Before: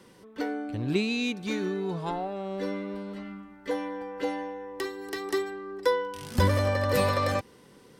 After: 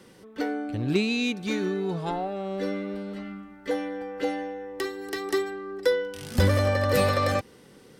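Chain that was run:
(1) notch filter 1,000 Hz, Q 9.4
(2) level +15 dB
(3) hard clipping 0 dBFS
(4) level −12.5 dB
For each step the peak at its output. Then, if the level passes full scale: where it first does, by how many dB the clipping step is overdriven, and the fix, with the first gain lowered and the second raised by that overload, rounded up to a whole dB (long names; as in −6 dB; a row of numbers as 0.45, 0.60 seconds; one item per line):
−11.5, +3.5, 0.0, −12.5 dBFS
step 2, 3.5 dB
step 2 +11 dB, step 4 −8.5 dB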